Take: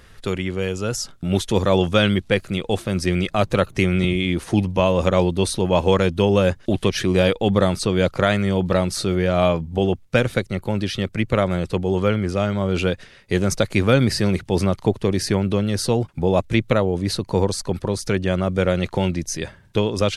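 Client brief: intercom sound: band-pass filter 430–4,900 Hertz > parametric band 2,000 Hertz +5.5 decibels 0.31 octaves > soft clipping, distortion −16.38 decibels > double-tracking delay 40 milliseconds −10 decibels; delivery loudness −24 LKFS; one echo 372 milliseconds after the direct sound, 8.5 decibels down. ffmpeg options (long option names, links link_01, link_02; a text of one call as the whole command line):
ffmpeg -i in.wav -filter_complex "[0:a]highpass=430,lowpass=4900,equalizer=frequency=2000:width_type=o:width=0.31:gain=5.5,aecho=1:1:372:0.376,asoftclip=threshold=-12.5dB,asplit=2[link_01][link_02];[link_02]adelay=40,volume=-10dB[link_03];[link_01][link_03]amix=inputs=2:normalize=0,volume=0.5dB" out.wav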